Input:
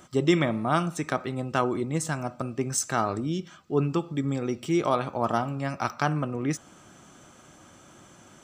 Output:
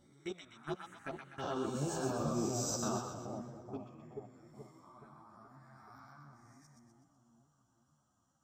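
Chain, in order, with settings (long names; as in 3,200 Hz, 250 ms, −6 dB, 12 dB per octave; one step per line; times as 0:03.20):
peak hold with a rise ahead of every peak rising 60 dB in 0.97 s
source passing by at 0:02.04, 17 m/s, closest 2.1 metres
output level in coarse steps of 21 dB
phaser swept by the level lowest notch 390 Hz, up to 2,000 Hz, full sweep at −41.5 dBFS
echo with a time of its own for lows and highs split 820 Hz, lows 427 ms, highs 125 ms, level −4 dB
string-ensemble chorus
level +9.5 dB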